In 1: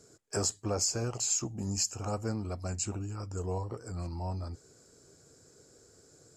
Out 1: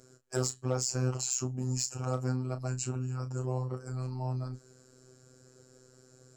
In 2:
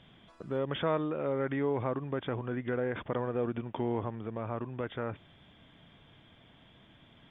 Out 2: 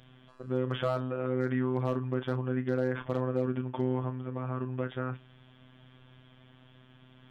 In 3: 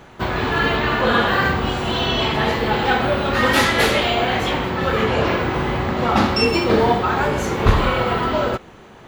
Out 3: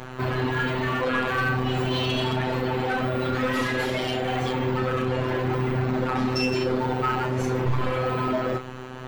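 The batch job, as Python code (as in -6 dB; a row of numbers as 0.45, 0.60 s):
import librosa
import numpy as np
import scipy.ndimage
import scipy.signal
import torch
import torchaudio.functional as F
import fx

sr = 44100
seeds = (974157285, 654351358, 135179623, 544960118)

p1 = fx.high_shelf(x, sr, hz=2300.0, db=-5.0)
p2 = fx.over_compress(p1, sr, threshold_db=-26.0, ratio=-1.0)
p3 = p1 + (p2 * 10.0 ** (3.0 / 20.0))
p4 = fx.robotise(p3, sr, hz=128.0)
p5 = np.clip(p4, -10.0 ** (-14.0 / 20.0), 10.0 ** (-14.0 / 20.0))
p6 = fx.doubler(p5, sr, ms=32.0, db=-10.0)
y = p6 * 10.0 ** (-4.0 / 20.0)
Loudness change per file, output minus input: 0.0, +2.0, -7.0 LU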